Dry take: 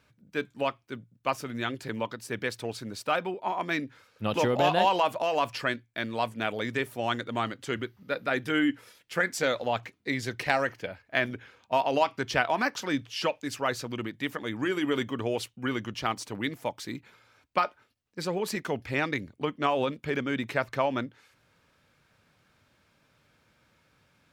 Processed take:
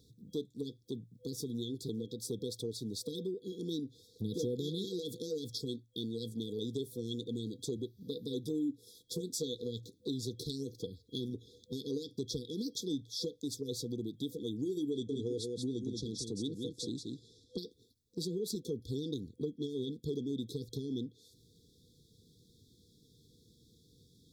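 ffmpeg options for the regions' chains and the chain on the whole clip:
-filter_complex "[0:a]asettb=1/sr,asplit=3[a][b][c];[a]atrim=end=14.914[d];[b]atrim=start=14.91:end=17.58,asetpts=PTS-STARTPTS,afade=t=in:d=0.004:c=qsin,afade=t=out:st=2.666:d=0.004:c=qsin,lowpass=f=9.4k:w=0.5412,lowpass=f=9.4k:w=1.3066,aecho=1:1:182:0.501,atrim=end_sample=117747[e];[c]atrim=start=17.576[f];[d][e]acrossfade=d=0.004:c1=hsin:c2=qsin[g];[g][f]acrossfade=d=0.004:c1=qsin:c2=hsin,afftfilt=real='re*(1-between(b*sr/4096,500,3300))':imag='im*(1-between(b*sr/4096,500,3300))':win_size=4096:overlap=0.75,acompressor=threshold=-44dB:ratio=2.5,volume=5dB"

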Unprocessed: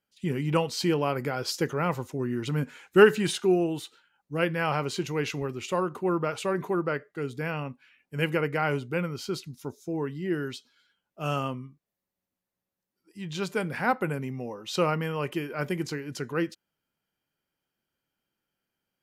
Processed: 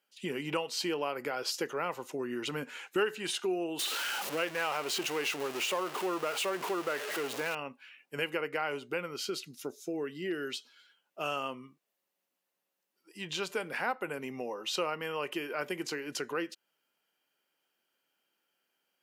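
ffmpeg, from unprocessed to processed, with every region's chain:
-filter_complex "[0:a]asettb=1/sr,asplit=3[a][b][c];[a]atrim=end=3.794[d];[b]atrim=start=3.79:end=7.55,asetpts=PTS-STARTPTS,afade=t=in:d=0.004:c=qsin,afade=t=out:st=3.756:d=0.004:c=qsin,aeval=exprs='val(0)+0.5*0.0355*sgn(val(0))':c=same,lowshelf=f=190:g=-6.5[e];[c]atrim=start=7.546[f];[d][e]acrossfade=d=0.004:c1=hsin:c2=qsin[g];[g][f]acrossfade=d=0.004:c1=qsin:c2=hsin,asettb=1/sr,asplit=3[h][i][j];[h]atrim=end=9.174[k];[i]atrim=start=9.17:end=10.53,asetpts=PTS-STARTPTS,afade=t=in:d=0.004:c=qsin,afade=t=out:st=1.356:d=0.004:c=qsin,equalizer=f=930:t=o:w=0.36:g=-14,asoftclip=type=hard:threshold=-19dB[l];[j]atrim=start=10.526[m];[k][l]acrossfade=d=0.004:c1=hsin:c2=qsin[n];[n][m]acrossfade=d=0.004:c1=qsin:c2=hsin,highpass=380,equalizer=f=2.8k:t=o:w=0.27:g=5,acompressor=threshold=-39dB:ratio=2.5,volume=4.5dB"

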